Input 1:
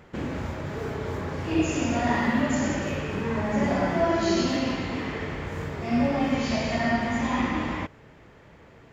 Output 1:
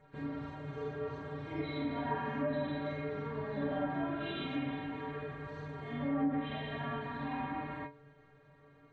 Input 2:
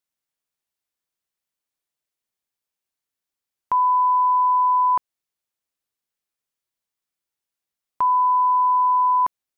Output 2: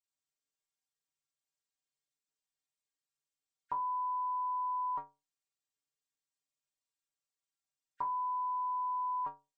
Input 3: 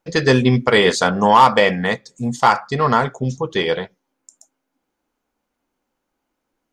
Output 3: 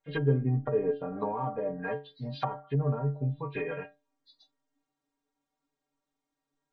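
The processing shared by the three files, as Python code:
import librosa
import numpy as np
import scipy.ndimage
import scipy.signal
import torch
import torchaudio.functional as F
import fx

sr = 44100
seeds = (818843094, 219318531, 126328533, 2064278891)

y = fx.freq_compress(x, sr, knee_hz=1400.0, ratio=1.5)
y = fx.stiff_resonator(y, sr, f0_hz=140.0, decay_s=0.31, stiffness=0.008)
y = fx.env_lowpass_down(y, sr, base_hz=470.0, full_db=-26.0)
y = y * librosa.db_to_amplitude(1.5)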